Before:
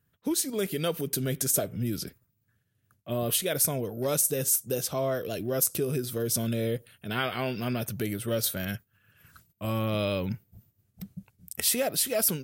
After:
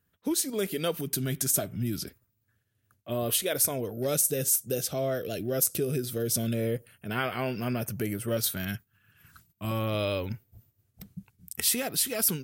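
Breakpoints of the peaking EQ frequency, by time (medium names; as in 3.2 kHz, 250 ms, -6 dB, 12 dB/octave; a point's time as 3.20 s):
peaking EQ -12.5 dB 0.33 oct
130 Hz
from 0.95 s 490 Hz
from 2.04 s 160 Hz
from 3.91 s 1 kHz
from 6.54 s 3.7 kHz
from 8.37 s 540 Hz
from 9.71 s 180 Hz
from 11.10 s 590 Hz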